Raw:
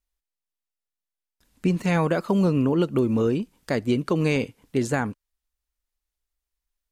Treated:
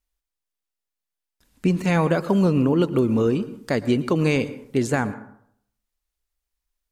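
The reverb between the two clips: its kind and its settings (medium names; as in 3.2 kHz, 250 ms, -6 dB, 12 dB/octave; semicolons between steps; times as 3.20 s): plate-style reverb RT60 0.67 s, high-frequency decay 0.45×, pre-delay 100 ms, DRR 15.5 dB; trim +2 dB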